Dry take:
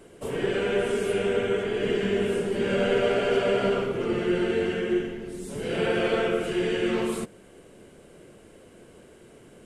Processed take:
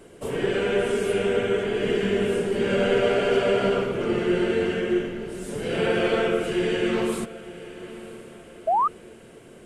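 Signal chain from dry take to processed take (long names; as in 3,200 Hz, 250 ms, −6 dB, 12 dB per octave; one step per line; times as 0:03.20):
feedback delay with all-pass diffusion 995 ms, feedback 41%, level −16 dB
sound drawn into the spectrogram rise, 0:08.67–0:08.88, 620–1,300 Hz −22 dBFS
level +2 dB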